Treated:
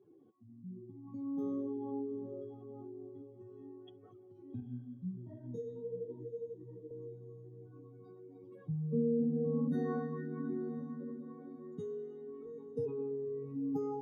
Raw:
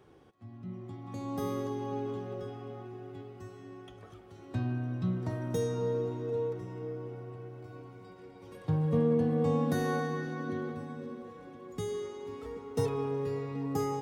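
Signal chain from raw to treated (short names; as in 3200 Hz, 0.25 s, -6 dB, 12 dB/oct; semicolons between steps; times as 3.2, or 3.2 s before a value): spectral contrast raised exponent 2.3; HPF 270 Hz 12 dB/oct; band shelf 820 Hz -8.5 dB 2.4 oct; diffused feedback echo 0.847 s, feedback 46%, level -16 dB; 4.6–6.91 detuned doubles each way 46 cents; gain +2.5 dB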